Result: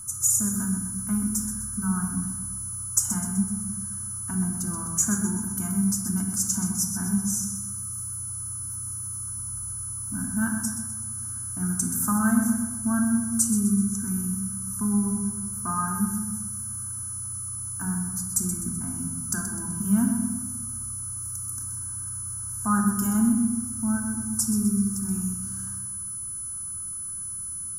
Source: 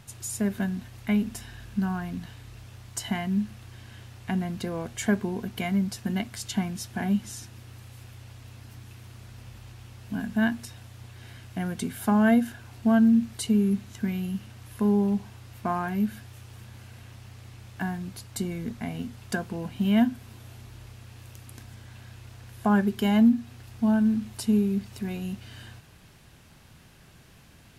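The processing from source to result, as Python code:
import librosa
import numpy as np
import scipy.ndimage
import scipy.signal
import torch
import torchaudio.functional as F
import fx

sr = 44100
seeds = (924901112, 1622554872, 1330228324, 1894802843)

p1 = fx.curve_eq(x, sr, hz=(150.0, 290.0, 550.0, 1300.0, 2000.0, 3800.0, 6100.0), db=(0, -7, -24, 7, -23, -23, 12))
p2 = p1 + 10.0 ** (-38.0 / 20.0) * np.sin(2.0 * np.pi * 10000.0 * np.arange(len(p1)) / sr)
p3 = p2 + fx.echo_feedback(p2, sr, ms=127, feedback_pct=47, wet_db=-9.0, dry=0)
y = fx.room_shoebox(p3, sr, seeds[0], volume_m3=2700.0, walls='furnished', distance_m=2.7)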